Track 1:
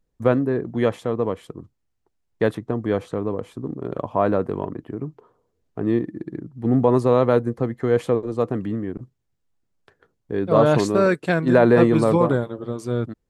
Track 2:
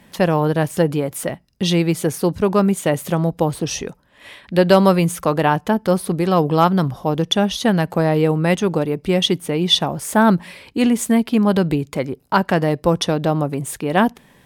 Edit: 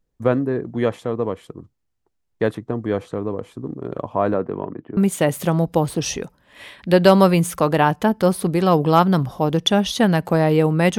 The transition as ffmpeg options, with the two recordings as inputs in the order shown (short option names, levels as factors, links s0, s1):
-filter_complex "[0:a]asettb=1/sr,asplit=3[s0][s1][s2];[s0]atrim=end=4.344[s3];[s1]atrim=start=4.34:end=4.97,asetpts=PTS-STARTPTS,afade=t=in:d=0.004:c=qsin,afade=t=out:st=0.626:d=0.004:c=qsin,highpass=120,lowpass=2900[s4];[s2]atrim=start=4.966[s5];[s3][s4]acrossfade=d=0.004:c1=hsin:c2=qsin[s6];[s6][s5]acrossfade=d=0.004:c1=qsin:c2=hsin,apad=whole_dur=10.98,atrim=end=10.98,atrim=end=4.972[s7];[1:a]atrim=start=2.618:end=8.63[s8];[s7][s8]acrossfade=d=0.004:c1=hsin:c2=hsin"